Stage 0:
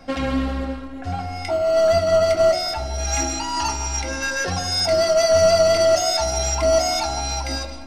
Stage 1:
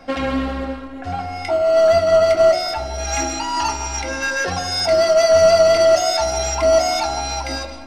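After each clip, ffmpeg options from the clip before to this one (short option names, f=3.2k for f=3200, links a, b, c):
-af "bass=f=250:g=-6,treble=f=4k:g=-5,volume=3.5dB"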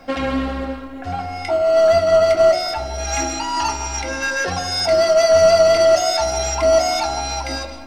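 -af "acrusher=bits=10:mix=0:aa=0.000001"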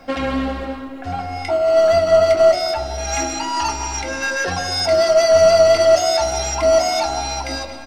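-filter_complex "[0:a]asplit=2[a][b];[b]adelay=233.2,volume=-12dB,highshelf=f=4k:g=-5.25[c];[a][c]amix=inputs=2:normalize=0"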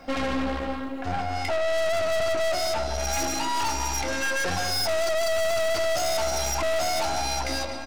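-af "aeval=exprs='(tanh(20*val(0)+0.75)-tanh(0.75))/20':c=same,volume=2dB"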